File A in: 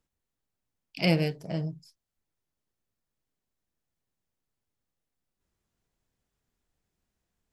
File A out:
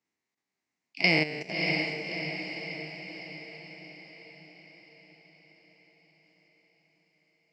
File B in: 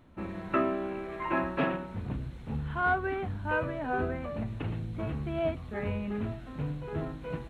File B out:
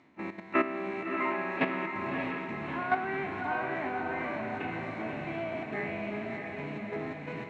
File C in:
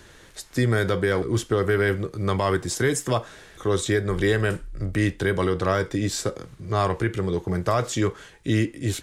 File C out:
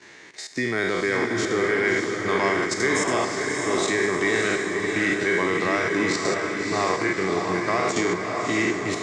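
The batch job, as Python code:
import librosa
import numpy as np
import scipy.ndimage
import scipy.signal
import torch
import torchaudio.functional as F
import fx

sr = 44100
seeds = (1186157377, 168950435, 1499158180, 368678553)

y = fx.spec_trails(x, sr, decay_s=0.92)
y = fx.level_steps(y, sr, step_db=12)
y = fx.cabinet(y, sr, low_hz=260.0, low_slope=12, high_hz=6900.0, hz=(530.0, 1400.0, 2100.0, 3300.0), db=(-8, -6, 9, -6))
y = fx.echo_diffused(y, sr, ms=617, feedback_pct=56, wet_db=-3.5)
y = y * 10.0 ** (3.5 / 20.0)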